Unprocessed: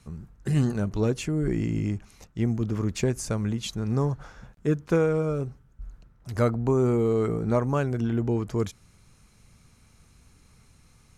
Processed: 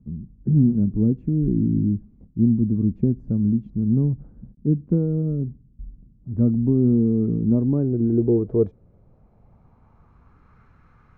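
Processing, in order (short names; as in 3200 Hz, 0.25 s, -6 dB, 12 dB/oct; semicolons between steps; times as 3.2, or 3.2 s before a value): low-pass sweep 240 Hz -> 1400 Hz, 7.37–10.6; gain +2.5 dB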